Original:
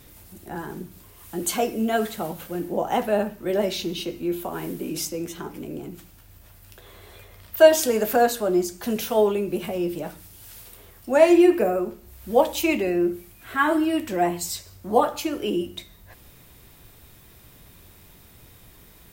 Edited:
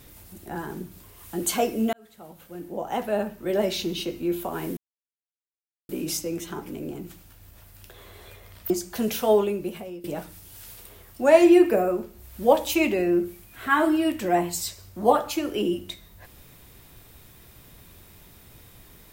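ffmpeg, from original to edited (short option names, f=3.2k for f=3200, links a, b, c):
-filter_complex "[0:a]asplit=5[a][b][c][d][e];[a]atrim=end=1.93,asetpts=PTS-STARTPTS,afade=t=out:st=1.926:d=0.004:c=hsin[f];[b]atrim=start=1.93:end=4.77,asetpts=PTS-STARTPTS,afade=t=in:d=1.81,afade=t=out:st=2.836:d=0.004:c=hsin,apad=pad_dur=1.12[g];[c]atrim=start=4.77:end=7.582,asetpts=PTS-STARTPTS,afade=t=in:d=0.004:c=hsin[h];[d]atrim=start=8.578:end=9.92,asetpts=PTS-STARTPTS,afade=t=out:st=0.692:d=0.65:silence=0.105925[i];[e]atrim=start=9.92,asetpts=PTS-STARTPTS,afade=t=in:d=0.004:c=hsin:silence=0.105925[j];[f][g][h]concat=n=3:v=0:a=1[k];[i][j]concat=n=2:v=0:a=1[l];[k][l]acrossfade=d=0.004:c1=hsin:c2=hsin"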